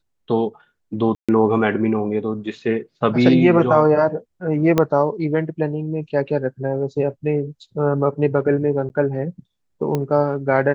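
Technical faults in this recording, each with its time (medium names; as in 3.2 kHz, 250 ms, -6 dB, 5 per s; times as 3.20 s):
1.15–1.29 s: dropout 136 ms
4.78 s: pop -4 dBFS
8.89–8.90 s: dropout 9.9 ms
9.95 s: pop -10 dBFS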